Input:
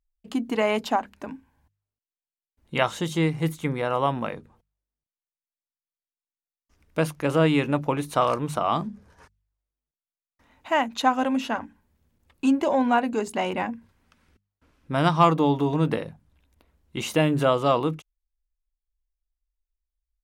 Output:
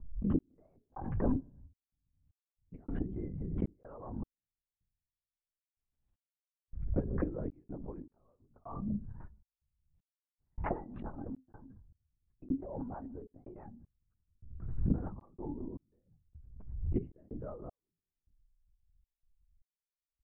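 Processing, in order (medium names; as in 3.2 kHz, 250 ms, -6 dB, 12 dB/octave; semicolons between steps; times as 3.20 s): expander on every frequency bin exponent 1.5; in parallel at +0.5 dB: compression, threshold -29 dBFS, peak gain reduction 15 dB; on the sum: peaking EQ 270 Hz +6 dB 0.24 oct; inverted gate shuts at -21 dBFS, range -31 dB; bass shelf 390 Hz +8 dB; hum notches 60/120/180/240/300/360/420 Hz; transient shaper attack -5 dB, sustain -1 dB; Bessel low-pass 970 Hz, order 8; LPC vocoder at 8 kHz whisper; on a send at -21.5 dB: reverberation RT60 0.55 s, pre-delay 8 ms; on the sum: trance gate "xx...xxxx." 78 bpm -60 dB; swell ahead of each attack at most 52 dB/s; trim +6 dB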